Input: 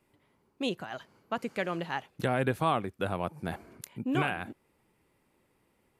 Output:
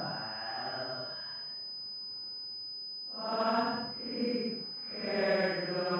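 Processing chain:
extreme stretch with random phases 6.9×, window 0.10 s, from 0:00.83
mains-hum notches 60/120 Hz
switching amplifier with a slow clock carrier 5,000 Hz

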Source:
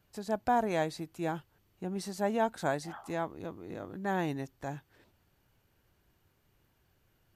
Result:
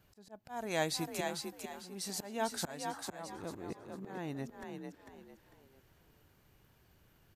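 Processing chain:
volume swells 706 ms
0:00.49–0:02.85: high-shelf EQ 2,100 Hz +11.5 dB
echo with shifted repeats 448 ms, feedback 30%, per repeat +42 Hz, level −5 dB
level +3 dB

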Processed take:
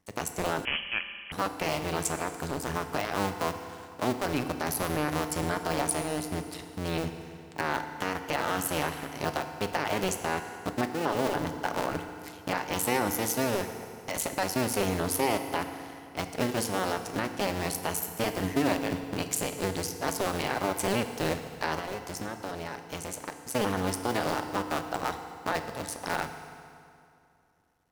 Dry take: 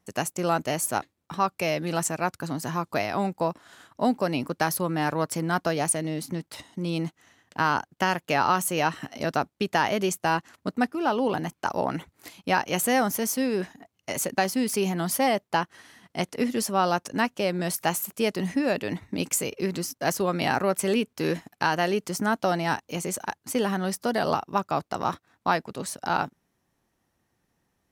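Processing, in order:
sub-harmonics by changed cycles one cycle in 2, muted
brickwall limiter −16.5 dBFS, peak gain reduction 7.5 dB
0:21.78–0:23.51: downward compressor, threshold −33 dBFS, peak gain reduction 10 dB
feedback delay network reverb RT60 2.5 s, low-frequency decay 1.05×, high-frequency decay 0.8×, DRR 7 dB
0:00.65–0:01.32: voice inversion scrambler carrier 3,200 Hz

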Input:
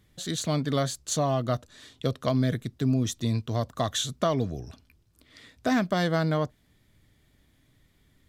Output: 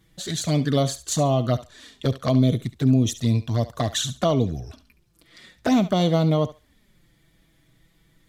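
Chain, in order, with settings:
flanger swept by the level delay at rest 6.3 ms, full sweep at −21.5 dBFS
feedback echo with a high-pass in the loop 70 ms, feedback 21%, high-pass 560 Hz, level −13.5 dB
level +6.5 dB

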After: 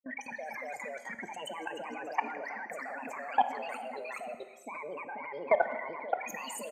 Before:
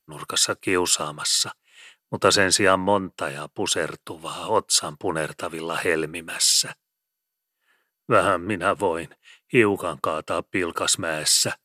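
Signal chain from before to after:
expanding power law on the bin magnitudes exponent 2.9
low-pass filter sweep 1,000 Hz → 4,000 Hz, 0:10.45–0:11.58
wrong playback speed 45 rpm record played at 78 rpm
brickwall limiter −15 dBFS, peak gain reduction 11 dB
delay with pitch and tempo change per echo 209 ms, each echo −1 semitone, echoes 2
output level in coarse steps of 20 dB
parametric band 950 Hz −4 dB 0.24 octaves
far-end echo of a speakerphone 110 ms, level −30 dB
reverb whose tail is shaped and stops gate 500 ms falling, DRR 9.5 dB

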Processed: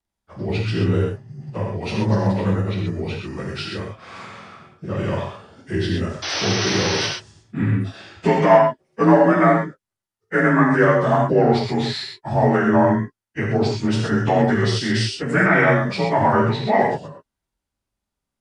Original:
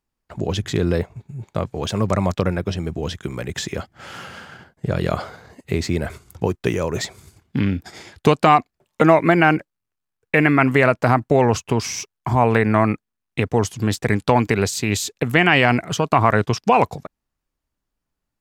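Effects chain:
partials spread apart or drawn together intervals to 89%
sound drawn into the spectrogram noise, 0:06.22–0:07.07, 270–6,200 Hz −26 dBFS
reverb whose tail is shaped and stops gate 150 ms flat, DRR −1 dB
level −1.5 dB

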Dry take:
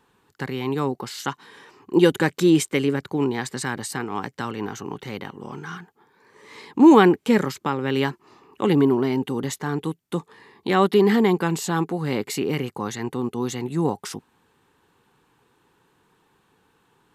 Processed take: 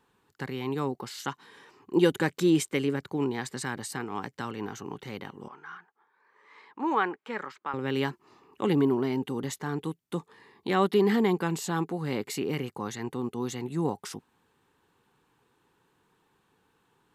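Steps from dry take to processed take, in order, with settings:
0:05.48–0:07.74: resonant band-pass 1,300 Hz, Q 1.2
level −6 dB

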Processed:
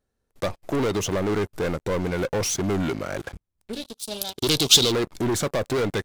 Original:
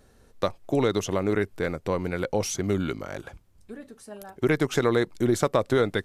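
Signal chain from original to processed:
leveller curve on the samples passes 5
0:03.73–0:04.92: high shelf with overshoot 2,600 Hz +12.5 dB, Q 3
level −11 dB

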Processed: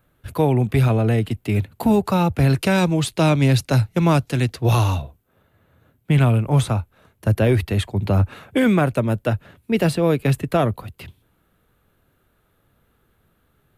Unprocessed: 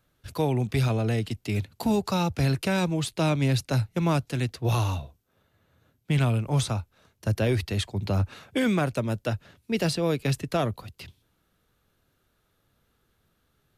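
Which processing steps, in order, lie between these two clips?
parametric band 5,400 Hz −13 dB 1.2 octaves, from 0:02.50 −3 dB, from 0:05.02 −12 dB
level +7.5 dB

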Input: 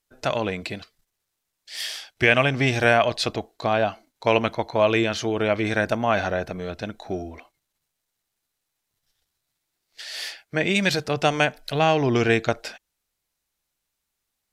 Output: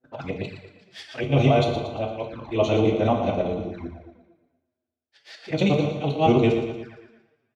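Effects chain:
reversed piece by piece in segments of 219 ms
noise gate with hold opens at −40 dBFS
high-pass filter 61 Hz 24 dB per octave
high-shelf EQ 7,200 Hz +9.5 dB
mains-hum notches 60/120/180 Hz
brickwall limiter −10 dBFS, peak gain reduction 8 dB
volume swells 215 ms
phase-vocoder stretch with locked phases 0.52×
head-to-tape spacing loss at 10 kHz 27 dB
repeating echo 115 ms, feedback 52%, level −10 dB
on a send at −2.5 dB: convolution reverb, pre-delay 3 ms
on the sum: flanger swept by the level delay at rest 8.2 ms, full sweep at −31 dBFS
level +6 dB

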